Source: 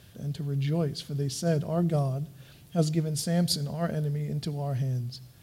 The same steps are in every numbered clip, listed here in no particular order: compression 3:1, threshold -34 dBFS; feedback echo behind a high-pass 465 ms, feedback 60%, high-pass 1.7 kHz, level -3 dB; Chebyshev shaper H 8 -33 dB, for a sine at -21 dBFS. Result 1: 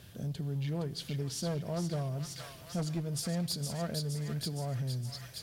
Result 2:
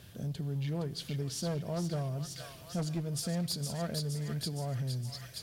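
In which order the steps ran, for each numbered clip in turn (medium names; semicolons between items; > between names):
Chebyshev shaper > feedback echo behind a high-pass > compression; feedback echo behind a high-pass > Chebyshev shaper > compression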